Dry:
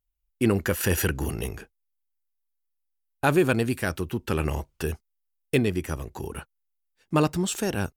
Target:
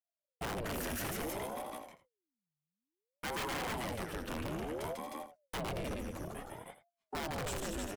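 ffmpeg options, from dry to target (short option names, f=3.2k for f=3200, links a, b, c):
-filter_complex "[0:a]aecho=1:1:52|147|228|243|310|392:0.141|0.562|0.251|0.168|0.531|0.119,acrossover=split=140|1300[a][b][c];[b]aeval=exprs='(mod(7.94*val(0)+1,2)-1)/7.94':c=same[d];[a][d][c]amix=inputs=3:normalize=0,agate=range=-16dB:threshold=-58dB:ratio=16:detection=peak,asoftclip=type=tanh:threshold=-26dB,aeval=exprs='val(0)*sin(2*PI*420*n/s+420*0.65/0.58*sin(2*PI*0.58*n/s))':c=same,volume=-6dB"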